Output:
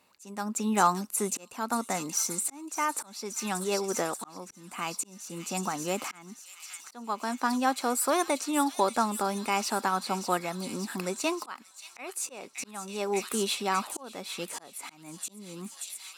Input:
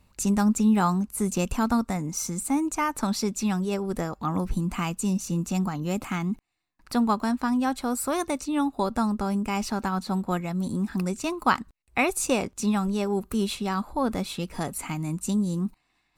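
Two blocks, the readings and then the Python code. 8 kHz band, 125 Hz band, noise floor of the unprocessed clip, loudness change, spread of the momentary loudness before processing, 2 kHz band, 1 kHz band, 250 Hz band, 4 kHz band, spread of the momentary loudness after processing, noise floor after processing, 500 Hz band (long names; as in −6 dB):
+1.5 dB, −13.0 dB, −71 dBFS, −3.5 dB, 6 LU, −2.0 dB, −0.5 dB, −9.5 dB, +0.5 dB, 15 LU, −55 dBFS, −2.0 dB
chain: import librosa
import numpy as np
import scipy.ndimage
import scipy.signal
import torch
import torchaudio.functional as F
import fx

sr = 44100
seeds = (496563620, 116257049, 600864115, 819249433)

p1 = x + fx.echo_wet_highpass(x, sr, ms=582, feedback_pct=72, hz=3300.0, wet_db=-6.5, dry=0)
p2 = fx.auto_swell(p1, sr, attack_ms=581.0)
p3 = scipy.signal.sosfilt(scipy.signal.butter(2, 380.0, 'highpass', fs=sr, output='sos'), p2)
y = F.gain(torch.from_numpy(p3), 2.5).numpy()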